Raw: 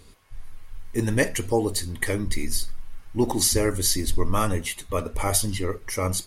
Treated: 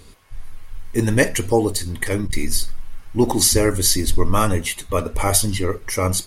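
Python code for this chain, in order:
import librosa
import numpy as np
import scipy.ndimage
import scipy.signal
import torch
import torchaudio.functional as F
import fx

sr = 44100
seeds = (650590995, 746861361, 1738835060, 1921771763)

y = fx.transformer_sat(x, sr, knee_hz=91.0, at=(1.6, 2.33))
y = F.gain(torch.from_numpy(y), 5.5).numpy()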